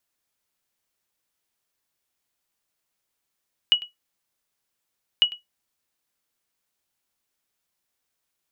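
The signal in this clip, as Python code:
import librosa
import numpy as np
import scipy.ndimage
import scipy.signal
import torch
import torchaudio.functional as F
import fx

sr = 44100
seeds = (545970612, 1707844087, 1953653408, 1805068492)

y = fx.sonar_ping(sr, hz=2920.0, decay_s=0.15, every_s=1.5, pings=2, echo_s=0.1, echo_db=-19.0, level_db=-8.5)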